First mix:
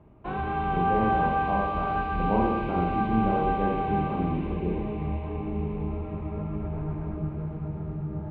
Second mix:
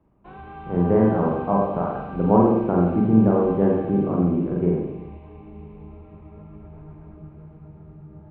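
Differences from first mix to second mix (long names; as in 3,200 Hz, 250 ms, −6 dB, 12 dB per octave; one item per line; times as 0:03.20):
speech +9.5 dB
background −10.5 dB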